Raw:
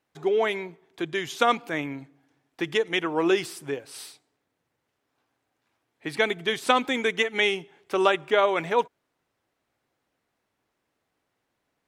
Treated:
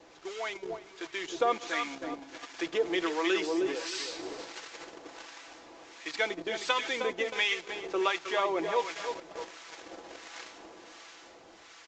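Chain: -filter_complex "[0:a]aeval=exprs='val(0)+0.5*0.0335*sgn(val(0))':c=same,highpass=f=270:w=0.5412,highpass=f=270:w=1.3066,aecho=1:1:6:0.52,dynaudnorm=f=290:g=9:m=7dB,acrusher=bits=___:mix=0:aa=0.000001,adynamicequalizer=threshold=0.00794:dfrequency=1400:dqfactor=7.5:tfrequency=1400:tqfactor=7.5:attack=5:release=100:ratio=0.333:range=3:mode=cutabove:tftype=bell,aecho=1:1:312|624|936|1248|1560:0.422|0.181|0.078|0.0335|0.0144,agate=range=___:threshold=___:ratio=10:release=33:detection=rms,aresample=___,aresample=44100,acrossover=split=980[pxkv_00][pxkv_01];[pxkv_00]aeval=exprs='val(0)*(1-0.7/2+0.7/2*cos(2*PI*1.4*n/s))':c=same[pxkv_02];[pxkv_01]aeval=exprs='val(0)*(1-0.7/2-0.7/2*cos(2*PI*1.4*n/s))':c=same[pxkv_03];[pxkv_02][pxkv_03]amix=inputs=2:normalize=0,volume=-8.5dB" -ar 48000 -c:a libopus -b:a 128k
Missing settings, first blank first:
5, -8dB, -28dB, 16000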